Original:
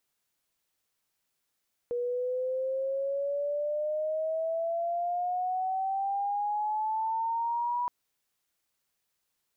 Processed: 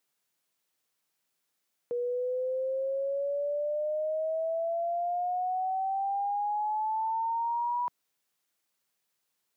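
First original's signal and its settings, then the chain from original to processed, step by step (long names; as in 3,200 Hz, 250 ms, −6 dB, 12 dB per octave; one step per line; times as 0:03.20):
glide logarithmic 480 Hz → 980 Hz −28 dBFS → −27 dBFS 5.97 s
high-pass filter 130 Hz 12 dB per octave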